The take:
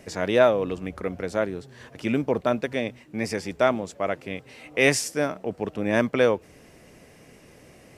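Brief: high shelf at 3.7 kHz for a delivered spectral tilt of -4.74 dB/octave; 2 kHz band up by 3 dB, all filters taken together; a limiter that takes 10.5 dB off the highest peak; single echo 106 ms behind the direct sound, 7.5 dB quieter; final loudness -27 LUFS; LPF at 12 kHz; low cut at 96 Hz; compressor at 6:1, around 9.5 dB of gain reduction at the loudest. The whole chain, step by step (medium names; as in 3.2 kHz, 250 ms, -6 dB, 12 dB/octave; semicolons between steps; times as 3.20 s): high-pass 96 Hz; low-pass 12 kHz; peaking EQ 2 kHz +6 dB; treble shelf 3.7 kHz -9 dB; compression 6:1, threshold -22 dBFS; peak limiter -20.5 dBFS; delay 106 ms -7.5 dB; trim +6 dB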